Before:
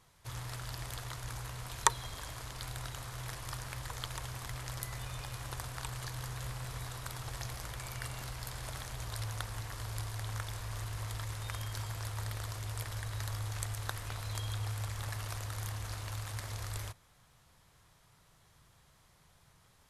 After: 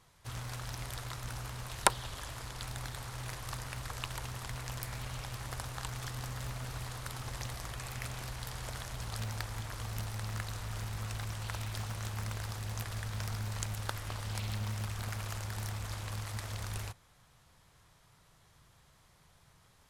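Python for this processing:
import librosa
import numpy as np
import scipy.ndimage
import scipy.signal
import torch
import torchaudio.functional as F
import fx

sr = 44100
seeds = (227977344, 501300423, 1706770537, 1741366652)

y = fx.doppler_dist(x, sr, depth_ms=0.88)
y = y * 10.0 ** (1.0 / 20.0)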